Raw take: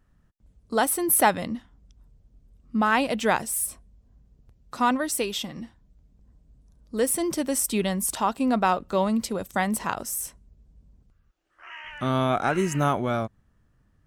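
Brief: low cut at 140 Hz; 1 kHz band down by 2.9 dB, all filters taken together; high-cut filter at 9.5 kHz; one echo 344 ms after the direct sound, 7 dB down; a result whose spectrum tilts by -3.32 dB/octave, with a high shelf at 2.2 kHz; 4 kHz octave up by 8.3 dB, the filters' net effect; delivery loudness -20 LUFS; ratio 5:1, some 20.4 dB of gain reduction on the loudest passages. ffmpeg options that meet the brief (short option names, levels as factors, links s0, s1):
-af "highpass=140,lowpass=9500,equalizer=f=1000:t=o:g=-5.5,highshelf=f=2200:g=7,equalizer=f=4000:t=o:g=4.5,acompressor=threshold=0.0112:ratio=5,aecho=1:1:344:0.447,volume=10"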